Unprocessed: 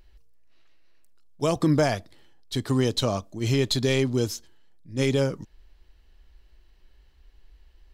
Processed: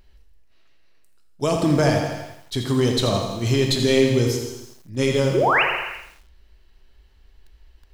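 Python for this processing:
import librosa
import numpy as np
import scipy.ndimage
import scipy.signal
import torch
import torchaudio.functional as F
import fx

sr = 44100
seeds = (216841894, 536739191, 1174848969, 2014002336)

y = fx.spec_paint(x, sr, seeds[0], shape='rise', start_s=5.34, length_s=0.29, low_hz=310.0, high_hz=3100.0, level_db=-21.0)
y = fx.rev_gated(y, sr, seeds[1], gate_ms=420, shape='falling', drr_db=3.5)
y = fx.echo_crushed(y, sr, ms=83, feedback_pct=55, bits=8, wet_db=-8.5)
y = y * librosa.db_to_amplitude(2.0)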